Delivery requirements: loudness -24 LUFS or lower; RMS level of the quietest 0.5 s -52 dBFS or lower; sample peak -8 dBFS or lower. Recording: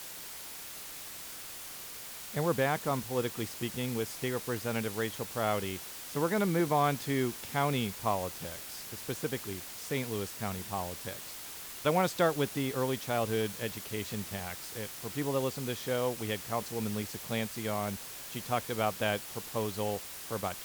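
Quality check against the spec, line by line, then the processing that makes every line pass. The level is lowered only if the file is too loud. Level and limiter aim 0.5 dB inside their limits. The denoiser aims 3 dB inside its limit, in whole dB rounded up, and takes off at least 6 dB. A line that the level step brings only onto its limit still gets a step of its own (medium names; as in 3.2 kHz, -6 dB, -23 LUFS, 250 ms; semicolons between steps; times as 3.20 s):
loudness -34.0 LUFS: pass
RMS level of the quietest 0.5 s -44 dBFS: fail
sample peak -14.0 dBFS: pass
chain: noise reduction 11 dB, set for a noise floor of -44 dBFS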